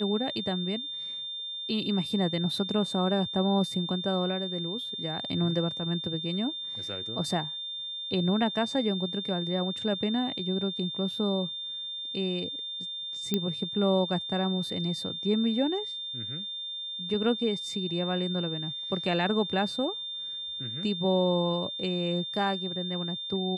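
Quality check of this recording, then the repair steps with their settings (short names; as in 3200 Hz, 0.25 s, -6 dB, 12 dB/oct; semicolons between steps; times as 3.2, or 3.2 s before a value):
tone 3600 Hz -34 dBFS
13.34 pop -13 dBFS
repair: de-click; notch 3600 Hz, Q 30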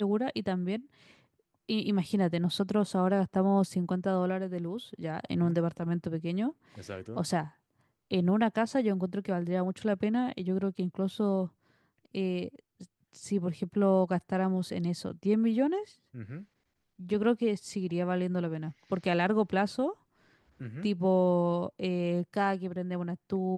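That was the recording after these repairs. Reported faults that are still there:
none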